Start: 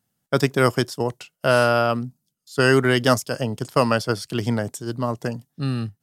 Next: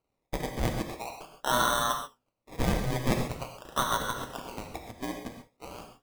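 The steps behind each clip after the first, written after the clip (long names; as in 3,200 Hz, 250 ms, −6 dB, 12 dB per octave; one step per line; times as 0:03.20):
high-pass filter 850 Hz 24 dB per octave
sample-and-hold swept by an LFO 25×, swing 60% 0.44 Hz
reverb whose tail is shaped and stops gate 160 ms flat, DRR 3 dB
level −5 dB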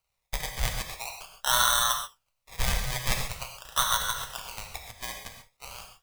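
guitar amp tone stack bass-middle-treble 10-0-10
level +9 dB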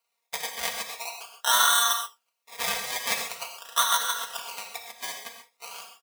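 high-pass filter 340 Hz 12 dB per octave
comb filter 4.3 ms, depth 84%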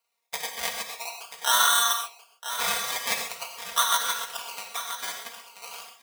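single-tap delay 984 ms −11 dB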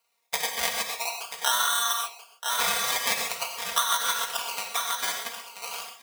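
downward compressor 6 to 1, threshold −25 dBFS, peak gain reduction 10 dB
level +5 dB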